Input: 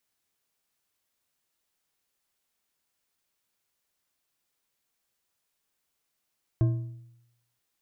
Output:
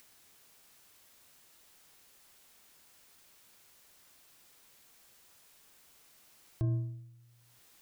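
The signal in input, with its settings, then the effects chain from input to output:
metal hit bar, length 0.98 s, lowest mode 119 Hz, decay 0.85 s, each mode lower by 10 dB, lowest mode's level -17.5 dB
upward compressor, threshold -46 dBFS; limiter -25 dBFS

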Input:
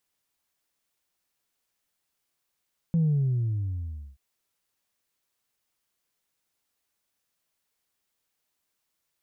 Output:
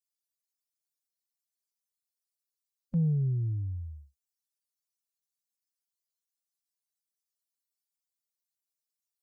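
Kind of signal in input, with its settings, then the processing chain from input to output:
sub drop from 170 Hz, over 1.23 s, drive 0 dB, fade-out 1.16 s, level -20 dB
per-bin expansion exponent 3

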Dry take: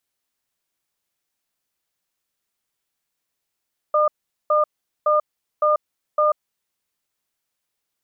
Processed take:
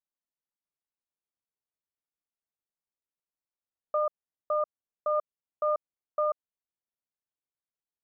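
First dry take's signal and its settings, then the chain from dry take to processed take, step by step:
cadence 604 Hz, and 1210 Hz, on 0.14 s, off 0.42 s, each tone -17 dBFS 2.39 s
G.711 law mismatch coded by A; LPF 1200 Hz 12 dB/oct; limiter -20.5 dBFS

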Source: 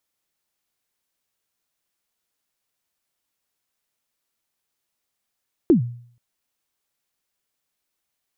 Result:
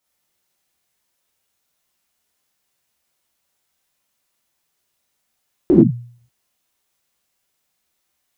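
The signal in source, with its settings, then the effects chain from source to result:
kick drum length 0.48 s, from 380 Hz, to 120 Hz, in 0.112 s, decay 0.55 s, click off, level -8 dB
non-linear reverb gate 0.13 s flat, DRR -6.5 dB

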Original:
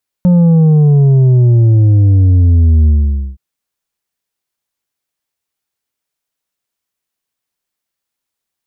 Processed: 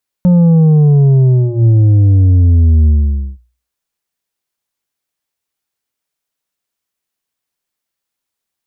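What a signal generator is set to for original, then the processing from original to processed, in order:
sub drop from 180 Hz, over 3.12 s, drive 5.5 dB, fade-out 0.50 s, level -5.5 dB
notches 60/120 Hz

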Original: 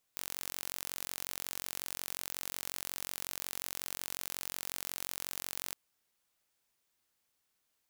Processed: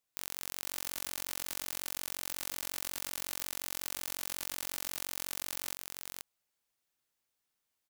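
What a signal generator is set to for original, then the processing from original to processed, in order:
pulse train 45.5/s, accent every 0, -11.5 dBFS 5.57 s
sample leveller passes 3; on a send: echo 0.48 s -4 dB

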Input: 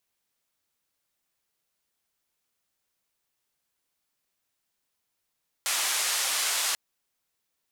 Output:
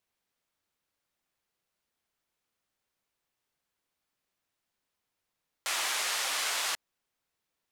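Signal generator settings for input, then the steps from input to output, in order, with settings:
noise band 790–10000 Hz, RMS -27.5 dBFS 1.09 s
high shelf 4600 Hz -8.5 dB

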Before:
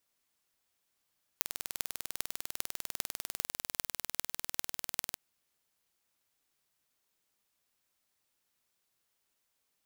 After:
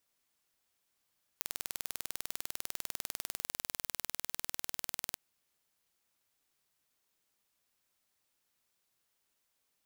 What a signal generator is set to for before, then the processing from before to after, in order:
pulse train 20.1/s, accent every 8, -2.5 dBFS 3.74 s
limiter -8.5 dBFS

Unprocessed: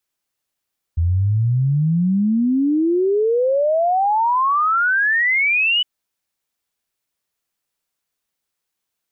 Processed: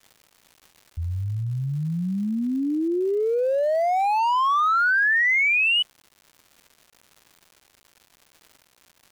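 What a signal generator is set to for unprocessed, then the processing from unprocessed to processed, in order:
log sweep 81 Hz -> 3000 Hz 4.86 s -14 dBFS
Wiener smoothing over 25 samples; low shelf 380 Hz -10.5 dB; crackle 270/s -40 dBFS

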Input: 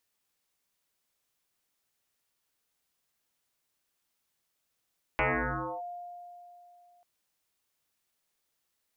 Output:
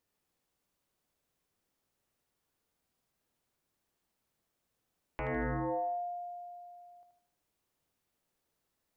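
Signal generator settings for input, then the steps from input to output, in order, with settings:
FM tone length 1.84 s, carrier 705 Hz, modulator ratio 0.27, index 9.4, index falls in 0.63 s linear, decay 2.95 s, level -23 dB
tilt shelf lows +7 dB; limiter -29 dBFS; thinning echo 78 ms, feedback 51%, high-pass 600 Hz, level -4 dB

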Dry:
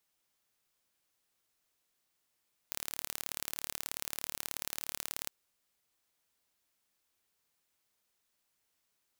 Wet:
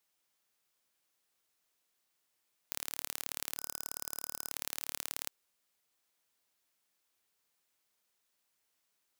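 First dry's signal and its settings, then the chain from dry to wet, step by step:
pulse train 36.8/s, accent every 2, -8.5 dBFS 2.57 s
spectral gain 3.58–4.51, 1500–5000 Hz -10 dB; low shelf 160 Hz -7.5 dB

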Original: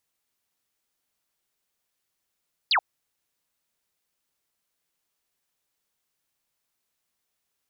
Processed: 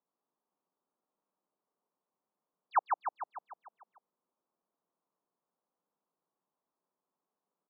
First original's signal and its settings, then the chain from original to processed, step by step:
laser zap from 5100 Hz, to 680 Hz, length 0.08 s sine, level -18 dB
Chebyshev band-pass 180–1100 Hz, order 3; feedback echo 0.149 s, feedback 58%, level -4 dB

